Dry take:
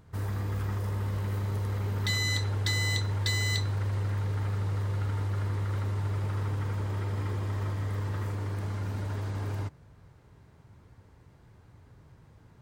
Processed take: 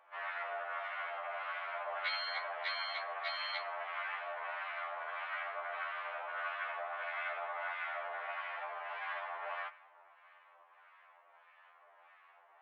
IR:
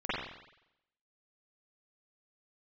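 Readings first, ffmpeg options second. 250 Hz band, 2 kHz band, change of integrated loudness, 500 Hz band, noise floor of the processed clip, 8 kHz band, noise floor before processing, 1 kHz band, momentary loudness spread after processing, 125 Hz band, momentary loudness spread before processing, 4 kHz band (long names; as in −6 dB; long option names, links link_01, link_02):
below −40 dB, −0.5 dB, −8.5 dB, −2.5 dB, −64 dBFS, below −35 dB, −57 dBFS, +3.5 dB, 4 LU, below −40 dB, 6 LU, −8.0 dB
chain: -filter_complex "[0:a]highpass=frequency=540:width_type=q:width=0.5412,highpass=frequency=540:width_type=q:width=1.307,lowpass=frequency=2800:width_type=q:width=0.5176,lowpass=frequency=2800:width_type=q:width=0.7071,lowpass=frequency=2800:width_type=q:width=1.932,afreqshift=190,asplit=2[link_01][link_02];[1:a]atrim=start_sample=2205,asetrate=40572,aresample=44100[link_03];[link_02][link_03]afir=irnorm=-1:irlink=0,volume=-26dB[link_04];[link_01][link_04]amix=inputs=2:normalize=0,acrossover=split=1100[link_05][link_06];[link_05]aeval=exprs='val(0)*(1-0.7/2+0.7/2*cos(2*PI*1.6*n/s))':channel_layout=same[link_07];[link_06]aeval=exprs='val(0)*(1-0.7/2-0.7/2*cos(2*PI*1.6*n/s))':channel_layout=same[link_08];[link_07][link_08]amix=inputs=2:normalize=0,afftfilt=real='re*2*eq(mod(b,4),0)':imag='im*2*eq(mod(b,4),0)':win_size=2048:overlap=0.75,volume=10.5dB"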